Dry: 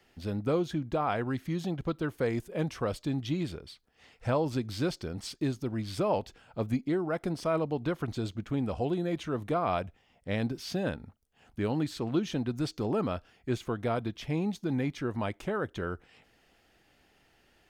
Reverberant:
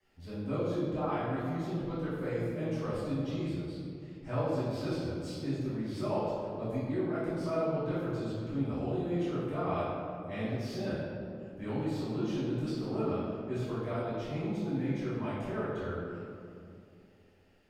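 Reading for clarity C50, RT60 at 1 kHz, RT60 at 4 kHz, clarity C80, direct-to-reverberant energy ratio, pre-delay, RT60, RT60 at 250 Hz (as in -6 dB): -2.0 dB, 2.2 s, 1.3 s, 0.0 dB, -12.0 dB, 3 ms, 2.6 s, 3.2 s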